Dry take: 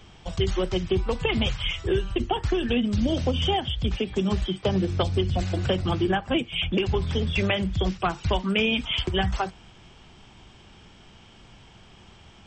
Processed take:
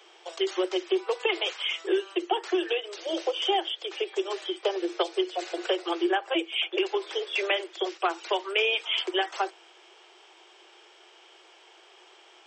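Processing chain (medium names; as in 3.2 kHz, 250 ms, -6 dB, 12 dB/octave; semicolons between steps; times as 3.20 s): Chebyshev high-pass 330 Hz, order 10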